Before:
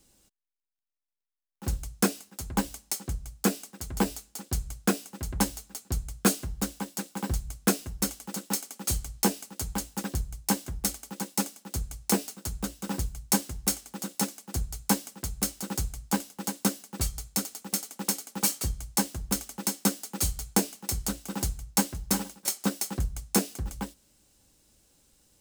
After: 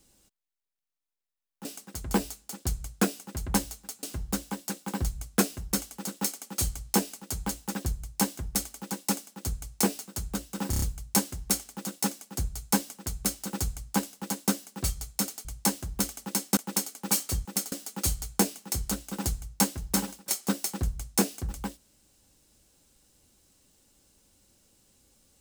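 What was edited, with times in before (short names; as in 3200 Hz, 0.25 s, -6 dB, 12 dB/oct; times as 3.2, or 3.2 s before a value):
1.65–3.51 cut
5.89–6.32 cut
12.99 stutter 0.03 s, 5 plays
17.62–17.89 swap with 18.77–19.89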